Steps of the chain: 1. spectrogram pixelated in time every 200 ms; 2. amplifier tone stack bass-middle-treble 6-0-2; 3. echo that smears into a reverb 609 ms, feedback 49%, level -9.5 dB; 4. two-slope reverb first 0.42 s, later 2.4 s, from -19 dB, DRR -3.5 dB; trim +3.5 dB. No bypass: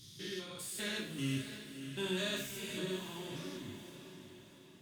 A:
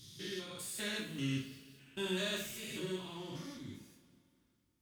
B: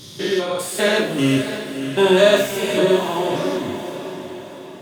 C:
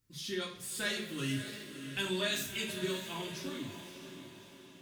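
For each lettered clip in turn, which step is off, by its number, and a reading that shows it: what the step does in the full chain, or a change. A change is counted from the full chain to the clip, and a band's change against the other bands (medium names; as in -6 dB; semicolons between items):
3, momentary loudness spread change -3 LU; 2, 1 kHz band +9.0 dB; 1, 125 Hz band -3.0 dB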